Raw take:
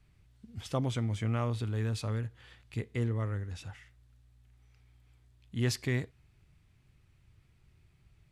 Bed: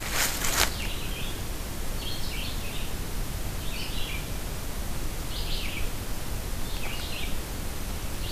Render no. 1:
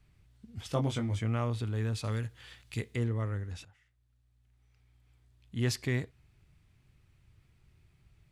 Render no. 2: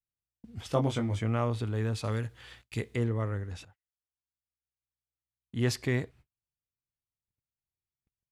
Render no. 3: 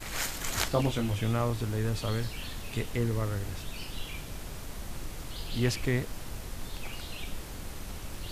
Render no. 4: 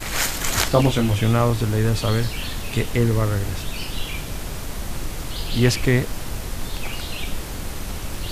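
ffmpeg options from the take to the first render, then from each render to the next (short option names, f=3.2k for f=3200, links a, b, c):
-filter_complex "[0:a]asettb=1/sr,asplit=3[a][b][c];[a]atrim=end=0.674[d];[b]atrim=start=0.67:end=1.19,asetpts=PTS-STARTPTS,afade=t=in:d=0.004:c=qsin,afade=t=out:st=0.516:d=0.004:c=qsin,asplit=2[e][f];[f]adelay=21,volume=-5dB[g];[e][g]amix=inputs=2:normalize=0,atrim=end_sample=22932[h];[c]atrim=start=1.186[i];[d][h]acrossfade=d=0.004:c1=hsin:c2=qsin[j];[j][i]acrossfade=d=0.004:c1=qsin:c2=hsin,asettb=1/sr,asplit=3[k][l][m];[k]atrim=end=2.044[n];[l]atrim=start=2.04:end=2.96,asetpts=PTS-STARTPTS,afade=t=in:d=0.004:c=qsin,afade=t=out:st=0.916:d=0.004:c=qsin,highshelf=f=2.3k:g=9.5[o];[m]atrim=start=2.956[p];[n][o]acrossfade=d=0.004:c1=hsin:c2=qsin[q];[q][p]acrossfade=d=0.004:c1=qsin:c2=hsin,asplit=2[r][s];[r]atrim=end=3.65,asetpts=PTS-STARTPTS,afade=t=out:st=3.646:d=0.004:c=hsin:silence=0.133352[t];[s]atrim=start=3.65,asetpts=PTS-STARTPTS,afade=t=in:d=2.05:silence=0.133352[u];[t][u]concat=n=2:v=0:a=1"
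-af "agate=range=-38dB:threshold=-55dB:ratio=16:detection=peak,equalizer=f=610:w=0.43:g=5"
-filter_complex "[1:a]volume=-7dB[a];[0:a][a]amix=inputs=2:normalize=0"
-af "volume=10.5dB,alimiter=limit=-1dB:level=0:latency=1"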